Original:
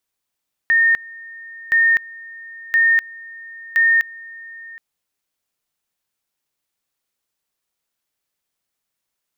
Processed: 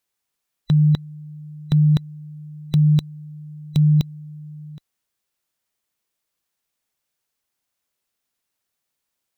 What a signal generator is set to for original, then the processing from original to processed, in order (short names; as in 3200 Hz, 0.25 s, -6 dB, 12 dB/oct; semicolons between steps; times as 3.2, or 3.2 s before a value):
two-level tone 1830 Hz -11 dBFS, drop 22.5 dB, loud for 0.25 s, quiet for 0.77 s, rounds 4
band inversion scrambler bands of 2000 Hz